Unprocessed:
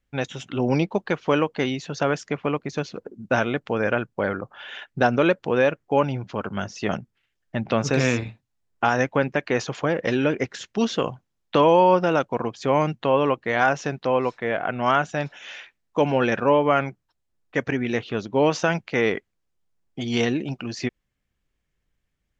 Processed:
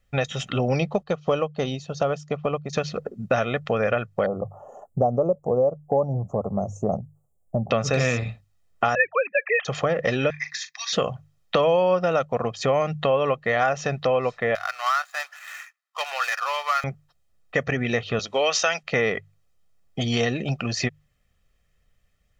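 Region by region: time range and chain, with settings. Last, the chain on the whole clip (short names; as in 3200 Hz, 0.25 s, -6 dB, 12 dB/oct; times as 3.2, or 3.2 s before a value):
1.03–2.73 bell 1900 Hz -11.5 dB 0.82 oct + upward expander, over -42 dBFS
4.26–7.71 inverse Chebyshev band-stop 1500–5000 Hz + band shelf 3000 Hz -8.5 dB 1.2 oct
8.95–9.65 sine-wave speech + HPF 270 Hz + tilt shelf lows -9 dB, about 700 Hz
10.3–10.93 steep high-pass 1200 Hz + fixed phaser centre 2000 Hz, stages 8 + doubler 40 ms -12 dB
14.55–16.84 median filter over 15 samples + HPF 1100 Hz 24 dB/oct
18.19–18.83 BPF 210–6300 Hz + tilt +4.5 dB/oct
whole clip: notches 50/100/150 Hz; comb 1.6 ms, depth 63%; compressor 2.5:1, threshold -29 dBFS; gain +6.5 dB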